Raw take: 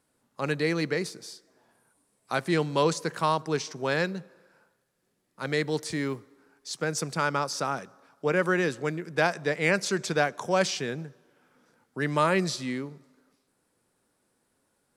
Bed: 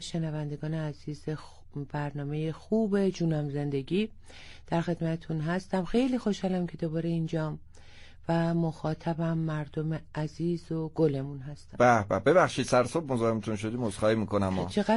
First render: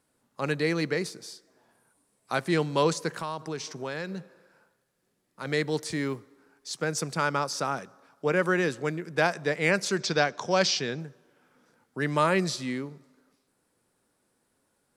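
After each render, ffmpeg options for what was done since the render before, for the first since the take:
-filter_complex "[0:a]asplit=3[a][b][c];[a]afade=t=out:st=3.13:d=0.02[d];[b]acompressor=threshold=-31dB:ratio=3:attack=3.2:release=140:knee=1:detection=peak,afade=t=in:st=3.13:d=0.02,afade=t=out:st=5.45:d=0.02[e];[c]afade=t=in:st=5.45:d=0.02[f];[d][e][f]amix=inputs=3:normalize=0,asettb=1/sr,asplit=3[g][h][i];[g]atrim=end=10.004[j];[h]atrim=start=10:end=11,asetpts=PTS-STARTPTS,afade=t=in:d=0.004:c=qsin,afade=t=out:st=0.996:d=0.004:c=qsin,lowpass=f=5.1k:t=q:w=2.3[k];[i]atrim=start=10.996[l];[j][k]acrossfade=d=0.004:c1=hsin:c2=qsin[m];[m][l]acrossfade=d=0.004:c1=qsin:c2=hsin"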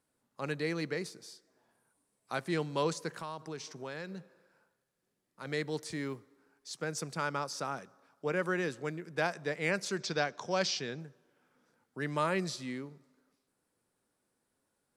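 -af "volume=-7.5dB"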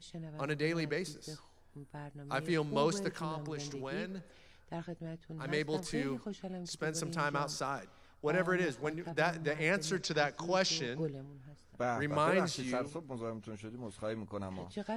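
-filter_complex "[1:a]volume=-13.5dB[a];[0:a][a]amix=inputs=2:normalize=0"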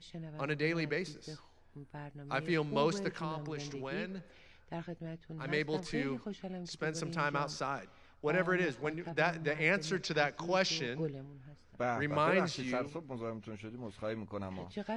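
-af "lowpass=5.6k,equalizer=f=2.3k:t=o:w=0.58:g=4"

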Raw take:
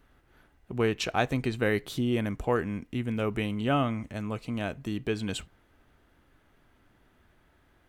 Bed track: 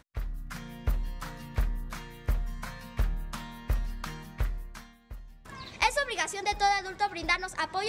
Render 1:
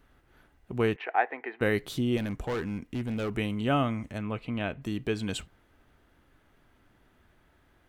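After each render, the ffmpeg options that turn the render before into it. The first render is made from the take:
-filter_complex "[0:a]asettb=1/sr,asplit=3[a][b][c];[a]atrim=end=0.964[d];[b]atrim=start=0.96:end=1.61,asetpts=PTS-STARTPTS,afade=t=in:d=0.004:c=qsin,afade=t=out:st=0.646:d=0.004:c=qsin,highpass=f=420:w=0.5412,highpass=f=420:w=1.3066,equalizer=f=560:t=q:w=4:g=-7,equalizer=f=810:t=q:w=4:g=7,equalizer=f=1.2k:t=q:w=4:g=-5,equalizer=f=1.9k:t=q:w=4:g=8,lowpass=f=2.1k:w=0.5412,lowpass=f=2.1k:w=1.3066[e];[c]atrim=start=1.606[f];[d][e]acrossfade=d=0.004:c1=hsin:c2=qsin[g];[g][f]acrossfade=d=0.004:c1=qsin:c2=hsin,asettb=1/sr,asplit=3[h][i][j];[h]atrim=end=2.174[k];[i]atrim=start=2.17:end=3.31,asetpts=PTS-STARTPTS,afade=t=in:d=0.004:c=qsin,afade=t=out:st=1.136:d=0.004:c=qsin,asoftclip=type=hard:threshold=-27.5dB[l];[j]atrim=start=3.306[m];[k][l]acrossfade=d=0.004:c1=hsin:c2=qsin[n];[n][m]acrossfade=d=0.004:c1=qsin:c2=hsin,asettb=1/sr,asplit=3[o][p][q];[o]atrim=end=4.184[r];[p]atrim=start=4.18:end=4.82,asetpts=PTS-STARTPTS,afade=t=in:d=0.004:c=qsin,afade=t=out:st=0.636:d=0.004:c=qsin,highshelf=f=4.2k:t=q:w=1.5:g=-11.5[s];[q]atrim=start=4.816[t];[r][s]acrossfade=d=0.004:c1=hsin:c2=qsin[u];[u][t]acrossfade=d=0.004:c1=qsin:c2=hsin"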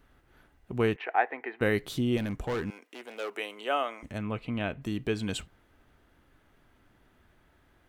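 -filter_complex "[0:a]asettb=1/sr,asplit=3[a][b][c];[a]atrim=end=2.704[d];[b]atrim=start=2.7:end=4.03,asetpts=PTS-STARTPTS,afade=t=in:d=0.004:c=qsin,afade=t=out:st=1.326:d=0.004:c=qsin,highpass=f=430:w=0.5412,highpass=f=430:w=1.3066[e];[c]atrim=start=4.026[f];[d][e]acrossfade=d=0.004:c1=hsin:c2=qsin[g];[g][f]acrossfade=d=0.004:c1=qsin:c2=hsin"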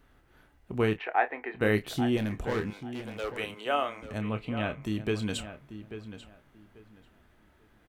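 -filter_complex "[0:a]asplit=2[a][b];[b]adelay=28,volume=-10.5dB[c];[a][c]amix=inputs=2:normalize=0,asplit=2[d][e];[e]adelay=840,lowpass=f=2.8k:p=1,volume=-11.5dB,asplit=2[f][g];[g]adelay=840,lowpass=f=2.8k:p=1,volume=0.22,asplit=2[h][i];[i]adelay=840,lowpass=f=2.8k:p=1,volume=0.22[j];[d][f][h][j]amix=inputs=4:normalize=0"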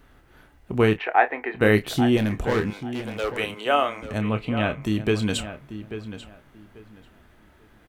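-af "volume=7.5dB"

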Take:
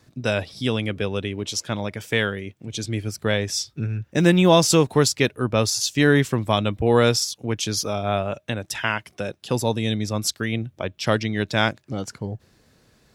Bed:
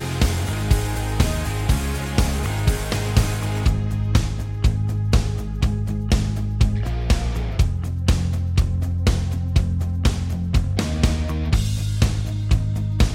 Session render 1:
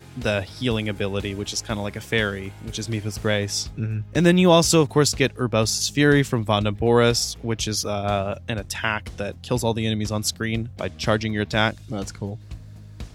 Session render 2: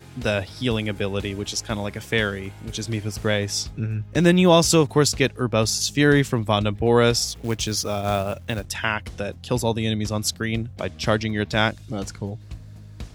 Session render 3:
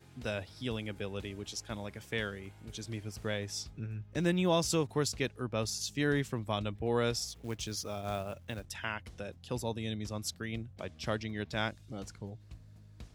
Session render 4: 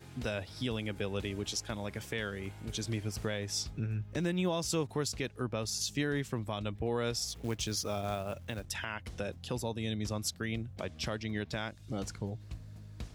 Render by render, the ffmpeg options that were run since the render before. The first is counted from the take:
-filter_complex "[1:a]volume=-19dB[a];[0:a][a]amix=inputs=2:normalize=0"
-filter_complex "[0:a]asettb=1/sr,asplit=3[a][b][c];[a]atrim=end=7.274[d];[b]atrim=start=7.27:end=8.65,asetpts=PTS-STARTPTS,afade=t=in:d=0.004:c=qsin,afade=t=out:st=1.376:d=0.004:c=qsin,acrusher=bits=5:mode=log:mix=0:aa=0.000001[e];[c]atrim=start=8.646[f];[d][e]acrossfade=d=0.004:c1=hsin:c2=qsin[g];[g][f]acrossfade=d=0.004:c1=qsin:c2=hsin"
-af "volume=-13.5dB"
-filter_complex "[0:a]asplit=2[a][b];[b]acompressor=threshold=-39dB:ratio=6,volume=1dB[c];[a][c]amix=inputs=2:normalize=0,alimiter=limit=-22.5dB:level=0:latency=1:release=266"

